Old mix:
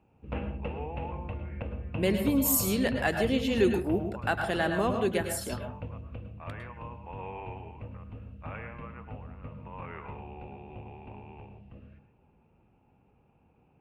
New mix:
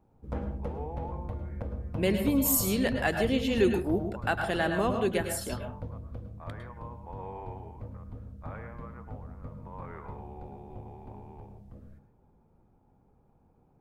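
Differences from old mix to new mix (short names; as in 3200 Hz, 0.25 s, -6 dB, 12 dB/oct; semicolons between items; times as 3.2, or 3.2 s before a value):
background: remove synth low-pass 2700 Hz, resonance Q 14; master: remove HPF 48 Hz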